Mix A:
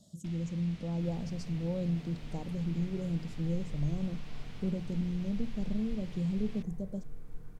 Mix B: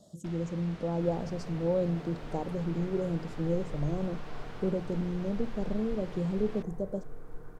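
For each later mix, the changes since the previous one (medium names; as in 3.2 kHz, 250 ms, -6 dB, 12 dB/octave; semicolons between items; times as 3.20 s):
master: add high-order bell 730 Hz +10.5 dB 2.7 oct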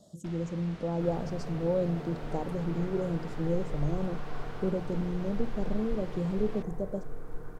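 second sound +4.5 dB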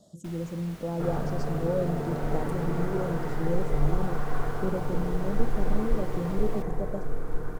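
first sound: remove low-pass 4.4 kHz 12 dB/octave; second sound +9.0 dB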